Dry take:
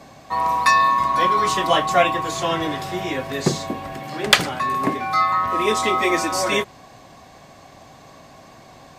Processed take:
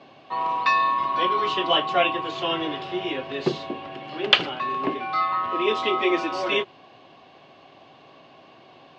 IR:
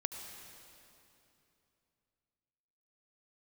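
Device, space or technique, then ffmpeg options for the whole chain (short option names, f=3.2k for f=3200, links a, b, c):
kitchen radio: -af "highpass=160,equalizer=f=200:t=q:w=4:g=-5,equalizer=f=370:t=q:w=4:g=6,equalizer=f=1.9k:t=q:w=4:g=-4,equalizer=f=2.9k:t=q:w=4:g=10,lowpass=f=4.2k:w=0.5412,lowpass=f=4.2k:w=1.3066,volume=-5dB"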